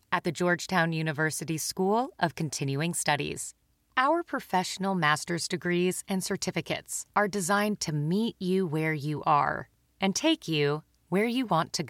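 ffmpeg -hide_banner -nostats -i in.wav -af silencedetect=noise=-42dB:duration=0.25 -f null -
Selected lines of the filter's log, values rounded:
silence_start: 3.51
silence_end: 3.97 | silence_duration: 0.46
silence_start: 9.63
silence_end: 10.01 | silence_duration: 0.38
silence_start: 10.80
silence_end: 11.12 | silence_duration: 0.32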